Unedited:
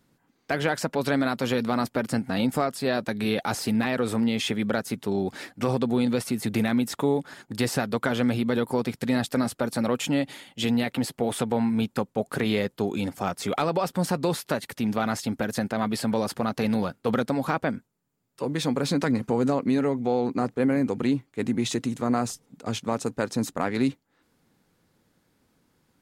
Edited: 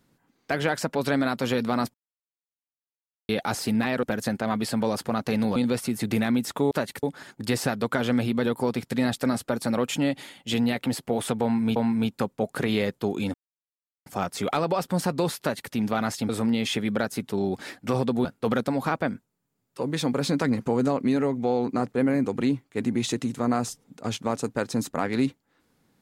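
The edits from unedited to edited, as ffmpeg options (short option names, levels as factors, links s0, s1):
-filter_complex "[0:a]asplit=11[s0][s1][s2][s3][s4][s5][s6][s7][s8][s9][s10];[s0]atrim=end=1.94,asetpts=PTS-STARTPTS,afade=t=out:st=1.936:d=0.004:c=hsin[s11];[s1]atrim=start=1.94:end=3.29,asetpts=PTS-STARTPTS,volume=0[s12];[s2]atrim=start=3.29:end=4.032,asetpts=PTS-STARTPTS,afade=t=in:d=0.004:c=hsin[s13];[s3]atrim=start=15.338:end=16.872[s14];[s4]atrim=start=5.988:end=7.142[s15];[s5]atrim=start=14.448:end=14.772[s16];[s6]atrim=start=7.138:end=11.872[s17];[s7]atrim=start=11.528:end=13.11,asetpts=PTS-STARTPTS,afade=t=out:st=1.578:d=0.004:c=hsin,apad=pad_dur=0.72[s18];[s8]atrim=start=13.11:end=15.342,asetpts=PTS-STARTPTS,afade=t=in:d=0.004:c=hsin[s19];[s9]atrim=start=4.028:end=5.992[s20];[s10]atrim=start=16.868[s21];[s11][s12][s13]concat=n=3:v=0:a=1[s22];[s22][s14]acrossfade=d=0.004:c1=hsin:c2=hsin[s23];[s23][s15]acrossfade=d=0.004:c1=hsin:c2=hsin[s24];[s24][s16]acrossfade=d=0.004:c1=hsin:c2=hsin[s25];[s25][s17]acrossfade=d=0.004:c1=hsin:c2=hsin[s26];[s18][s19]concat=n=2:v=0:a=1[s27];[s26][s27]acrossfade=d=0.004:c1=hsin:c2=hsin[s28];[s28][s20]acrossfade=d=0.004:c1=hsin:c2=hsin[s29];[s29][s21]acrossfade=d=0.004:c1=hsin:c2=hsin"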